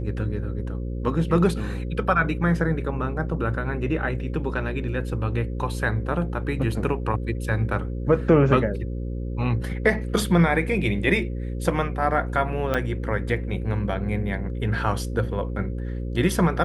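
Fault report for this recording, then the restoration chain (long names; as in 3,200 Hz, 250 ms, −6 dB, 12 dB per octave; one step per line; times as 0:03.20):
mains buzz 60 Hz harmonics 9 −29 dBFS
0:12.74–0:12.75: drop-out 5.6 ms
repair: hum removal 60 Hz, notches 9
repair the gap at 0:12.74, 5.6 ms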